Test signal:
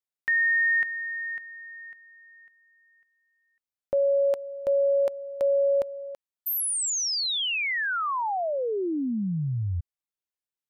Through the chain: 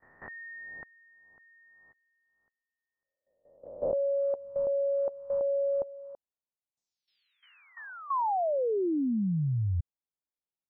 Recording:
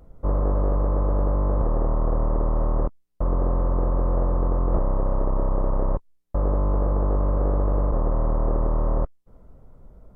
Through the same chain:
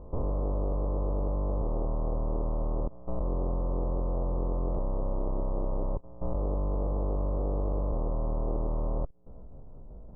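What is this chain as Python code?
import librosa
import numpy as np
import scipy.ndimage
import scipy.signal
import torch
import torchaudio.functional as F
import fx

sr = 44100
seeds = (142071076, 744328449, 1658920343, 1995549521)

y = fx.spec_swells(x, sr, rise_s=0.7)
y = scipy.signal.sosfilt(scipy.signal.butter(4, 1000.0, 'lowpass', fs=sr, output='sos'), y)
y = fx.level_steps(y, sr, step_db=16)
y = y * librosa.db_to_amplitude(4.0)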